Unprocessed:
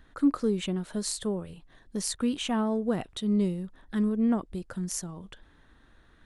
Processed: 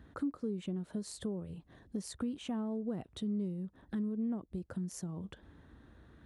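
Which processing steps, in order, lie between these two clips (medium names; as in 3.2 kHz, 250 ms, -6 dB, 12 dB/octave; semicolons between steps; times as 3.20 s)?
high-pass 56 Hz 24 dB/octave; tilt shelf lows +6.5 dB, about 740 Hz; compression 3:1, threshold -39 dBFS, peak gain reduction 18.5 dB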